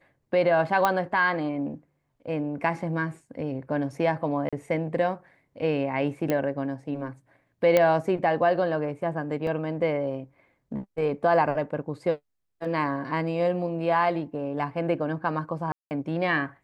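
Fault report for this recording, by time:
0:00.85: click −9 dBFS
0:04.49–0:04.53: drop-out 36 ms
0:06.30: click −13 dBFS
0:07.77: click −8 dBFS
0:09.47: drop-out 2 ms
0:15.72–0:15.91: drop-out 189 ms

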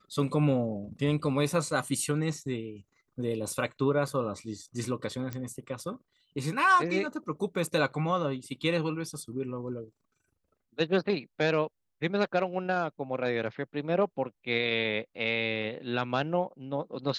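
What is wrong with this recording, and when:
0:05.33: click −21 dBFS

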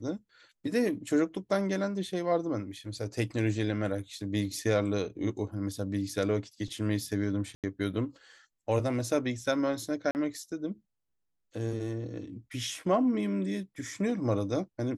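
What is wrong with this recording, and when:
0:07.55–0:07.64: drop-out 87 ms
0:10.11–0:10.15: drop-out 39 ms

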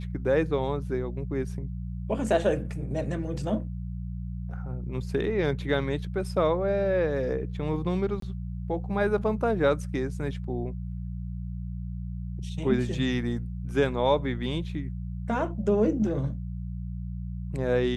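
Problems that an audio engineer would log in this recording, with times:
mains hum 60 Hz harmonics 3 −34 dBFS
0:08.20–0:08.22: drop-out 23 ms

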